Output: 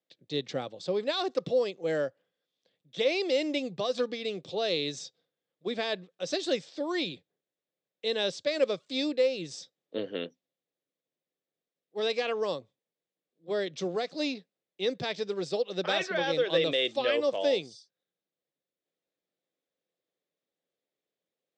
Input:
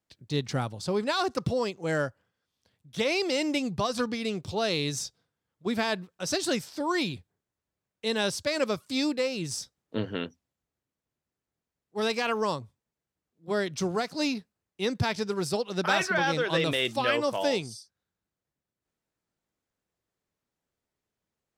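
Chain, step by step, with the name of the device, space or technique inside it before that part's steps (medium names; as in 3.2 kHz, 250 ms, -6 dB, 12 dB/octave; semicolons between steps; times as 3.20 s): distance through air 120 m; television speaker (cabinet simulation 180–8400 Hz, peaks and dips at 220 Hz -8 dB, 520 Hz +7 dB, 950 Hz -9 dB, 1.4 kHz -7 dB, 3.6 kHz +7 dB, 7.4 kHz +5 dB); trim -2 dB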